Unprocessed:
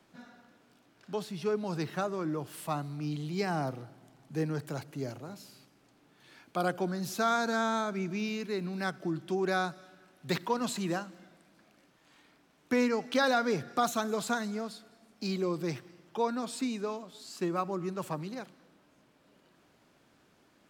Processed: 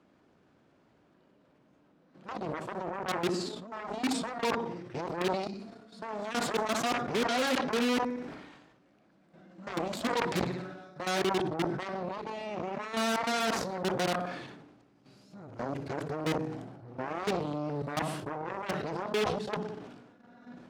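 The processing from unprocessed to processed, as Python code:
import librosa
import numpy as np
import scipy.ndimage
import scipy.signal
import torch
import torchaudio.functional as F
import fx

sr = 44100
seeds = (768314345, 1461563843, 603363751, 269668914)

y = x[::-1].copy()
y = scipy.signal.sosfilt(scipy.signal.butter(2, 9300.0, 'lowpass', fs=sr, output='sos'), y)
y = fx.echo_feedback(y, sr, ms=61, feedback_pct=49, wet_db=-14.0)
y = fx.level_steps(y, sr, step_db=10)
y = 10.0 ** (-20.5 / 20.0) * np.tanh(y / 10.0 ** (-20.5 / 20.0))
y = fx.tilt_eq(y, sr, slope=-3.5)
y = fx.cheby_harmonics(y, sr, harmonics=(7,), levels_db=(-9,), full_scale_db=-22.0)
y = scipy.signal.sosfilt(scipy.signal.butter(2, 51.0, 'highpass', fs=sr, output='sos'), y)
y = fx.low_shelf(y, sr, hz=210.0, db=-11.0)
y = fx.sustainer(y, sr, db_per_s=47.0)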